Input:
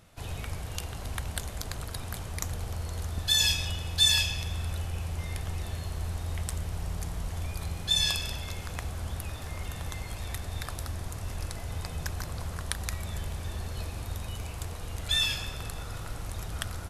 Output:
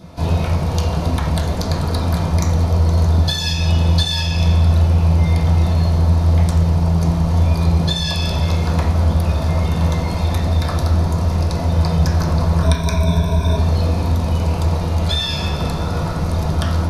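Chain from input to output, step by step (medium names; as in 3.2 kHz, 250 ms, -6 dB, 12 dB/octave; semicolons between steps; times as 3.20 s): 12.62–13.57 s: rippled EQ curve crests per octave 1.6, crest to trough 17 dB; compression 12:1, threshold -30 dBFS, peak gain reduction 13 dB; reverberation RT60 0.55 s, pre-delay 3 ms, DRR -11 dB; trim +2.5 dB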